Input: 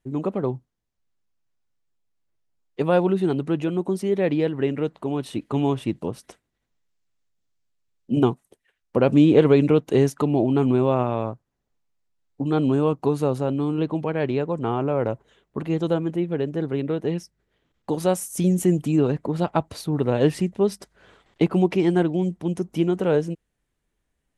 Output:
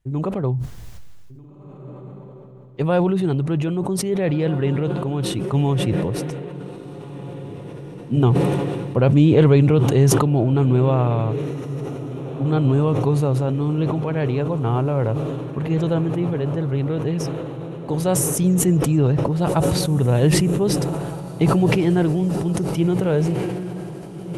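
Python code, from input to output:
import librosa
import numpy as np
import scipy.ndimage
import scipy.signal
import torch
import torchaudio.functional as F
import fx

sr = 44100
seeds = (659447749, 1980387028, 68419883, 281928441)

y = fx.low_shelf_res(x, sr, hz=170.0, db=7.5, q=1.5)
y = fx.echo_diffused(y, sr, ms=1686, feedback_pct=65, wet_db=-13.5)
y = fx.sustainer(y, sr, db_per_s=24.0)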